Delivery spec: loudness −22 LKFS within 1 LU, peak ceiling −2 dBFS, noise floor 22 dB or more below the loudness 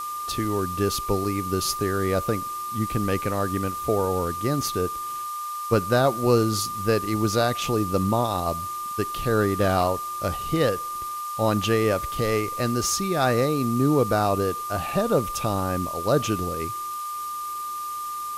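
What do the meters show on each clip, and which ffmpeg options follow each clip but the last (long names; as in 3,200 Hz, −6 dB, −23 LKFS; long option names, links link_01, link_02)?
interfering tone 1,200 Hz; level of the tone −29 dBFS; background noise floor −32 dBFS; target noise floor −47 dBFS; integrated loudness −24.5 LKFS; sample peak −7.0 dBFS; target loudness −22.0 LKFS
→ -af "bandreject=frequency=1200:width=30"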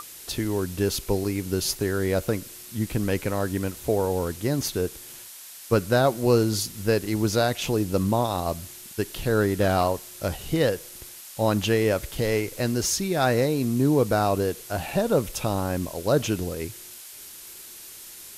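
interfering tone none found; background noise floor −43 dBFS; target noise floor −47 dBFS
→ -af "afftdn=noise_reduction=6:noise_floor=-43"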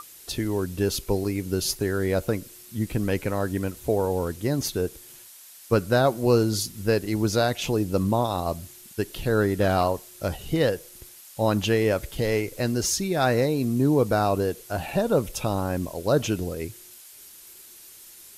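background noise floor −48 dBFS; integrated loudness −25.0 LKFS; sample peak −8.0 dBFS; target loudness −22.0 LKFS
→ -af "volume=3dB"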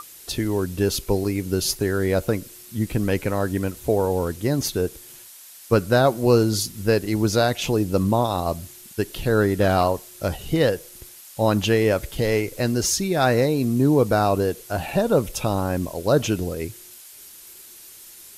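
integrated loudness −22.0 LKFS; sample peak −5.0 dBFS; background noise floor −45 dBFS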